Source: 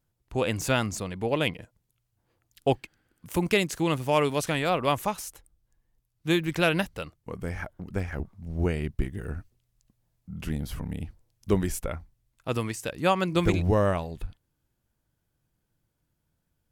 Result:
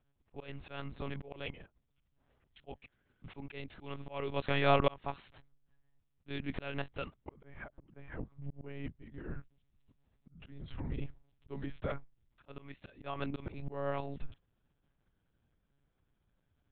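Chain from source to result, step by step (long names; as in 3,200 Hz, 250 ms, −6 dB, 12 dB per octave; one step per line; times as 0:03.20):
one-pitch LPC vocoder at 8 kHz 140 Hz
volume swells 673 ms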